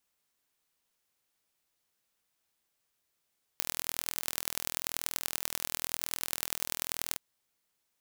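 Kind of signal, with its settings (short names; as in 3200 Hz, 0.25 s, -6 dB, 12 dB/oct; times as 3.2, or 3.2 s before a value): pulse train 41/s, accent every 4, -2.5 dBFS 3.57 s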